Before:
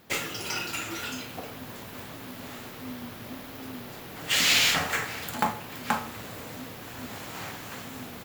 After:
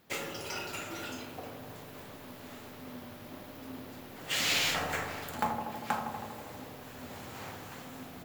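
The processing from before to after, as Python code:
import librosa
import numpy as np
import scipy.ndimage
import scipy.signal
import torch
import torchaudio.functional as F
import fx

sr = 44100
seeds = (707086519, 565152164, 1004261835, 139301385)

p1 = fx.dynamic_eq(x, sr, hz=590.0, q=0.75, threshold_db=-43.0, ratio=4.0, max_db=4)
p2 = p1 + fx.echo_wet_lowpass(p1, sr, ms=80, feedback_pct=76, hz=960.0, wet_db=-4, dry=0)
y = F.gain(torch.from_numpy(p2), -8.0).numpy()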